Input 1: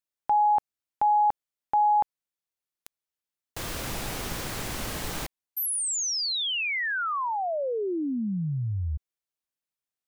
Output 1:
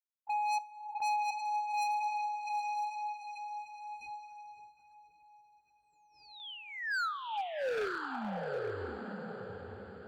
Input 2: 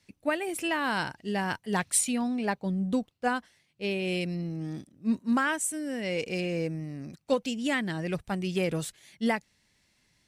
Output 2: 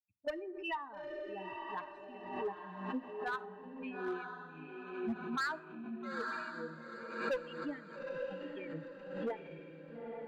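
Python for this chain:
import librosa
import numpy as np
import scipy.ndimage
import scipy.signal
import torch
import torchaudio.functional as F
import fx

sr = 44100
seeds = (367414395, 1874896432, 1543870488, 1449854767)

y = fx.bin_expand(x, sr, power=3.0)
y = scipy.signal.sosfilt(scipy.signal.butter(4, 3100.0, 'lowpass', fs=sr, output='sos'), y)
y = fx.wah_lfo(y, sr, hz=1.9, low_hz=380.0, high_hz=1500.0, q=2.8)
y = scipy.signal.sosfilt(scipy.signal.butter(4, 68.0, 'highpass', fs=sr, output='sos'), y)
y = fx.low_shelf(y, sr, hz=130.0, db=5.0)
y = 10.0 ** (-32.0 / 20.0) * np.tanh(y / 10.0 ** (-32.0 / 20.0))
y = fx.echo_diffused(y, sr, ms=888, feedback_pct=41, wet_db=-3.5)
y = np.clip(10.0 ** (35.5 / 20.0) * y, -1.0, 1.0) / 10.0 ** (35.5 / 20.0)
y = fx.rev_plate(y, sr, seeds[0], rt60_s=0.83, hf_ratio=0.5, predelay_ms=0, drr_db=16.0)
y = fx.gate_hold(y, sr, open_db=-48.0, close_db=-58.0, hold_ms=57.0, range_db=-7, attack_ms=0.57, release_ms=100.0)
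y = fx.pre_swell(y, sr, db_per_s=63.0)
y = y * 10.0 ** (4.0 / 20.0)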